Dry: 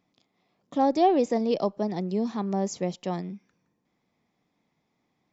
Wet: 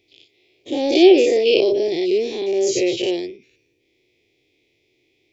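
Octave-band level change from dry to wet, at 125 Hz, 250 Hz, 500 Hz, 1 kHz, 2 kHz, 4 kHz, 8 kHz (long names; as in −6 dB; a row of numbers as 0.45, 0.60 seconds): −9.0 dB, +7.0 dB, +12.0 dB, −5.0 dB, +16.5 dB, +18.5 dB, can't be measured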